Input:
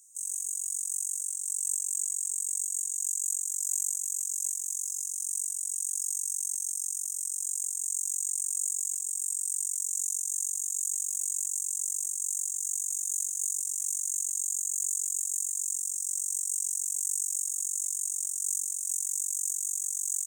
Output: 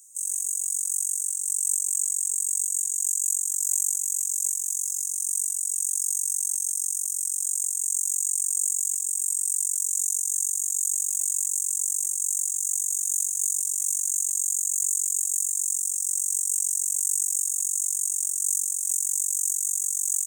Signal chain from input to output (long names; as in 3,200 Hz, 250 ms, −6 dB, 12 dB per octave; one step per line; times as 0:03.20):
high-shelf EQ 6,100 Hz +8.5 dB